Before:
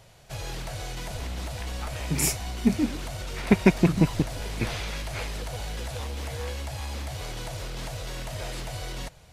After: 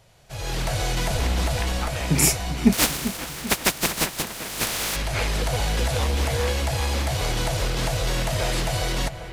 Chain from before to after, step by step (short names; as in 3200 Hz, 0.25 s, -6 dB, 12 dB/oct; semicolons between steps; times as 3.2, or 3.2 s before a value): 2.72–4.95 spectral contrast lowered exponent 0.26; AGC gain up to 13.5 dB; dark delay 0.394 s, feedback 53%, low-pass 2600 Hz, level -11.5 dB; gain -3 dB